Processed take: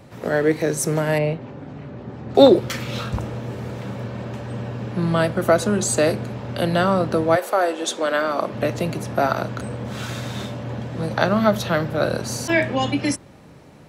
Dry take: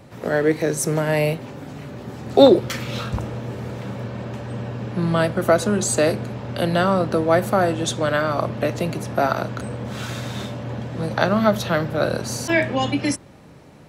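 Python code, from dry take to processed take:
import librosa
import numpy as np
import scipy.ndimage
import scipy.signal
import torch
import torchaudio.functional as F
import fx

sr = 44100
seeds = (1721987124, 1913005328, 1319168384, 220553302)

y = fx.spacing_loss(x, sr, db_at_10k=23, at=(1.18, 2.35))
y = fx.highpass(y, sr, hz=fx.line((7.35, 440.0), (8.52, 190.0)), slope=24, at=(7.35, 8.52), fade=0.02)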